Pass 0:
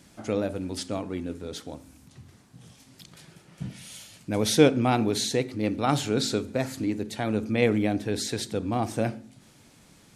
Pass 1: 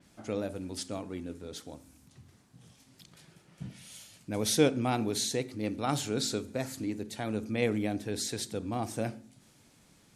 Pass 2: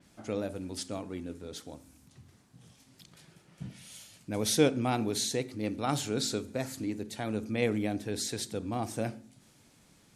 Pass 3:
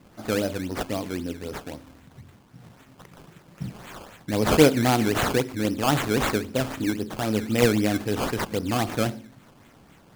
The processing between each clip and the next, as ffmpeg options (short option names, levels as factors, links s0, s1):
-af "adynamicequalizer=threshold=0.00562:dfrequency=4800:dqfactor=0.7:tfrequency=4800:tqfactor=0.7:attack=5:release=100:ratio=0.375:range=3:mode=boostabove:tftype=highshelf,volume=0.473"
-af anull
-af "acrusher=samples=16:mix=1:aa=0.000001:lfo=1:lforange=16:lforate=3.8,volume=2.66"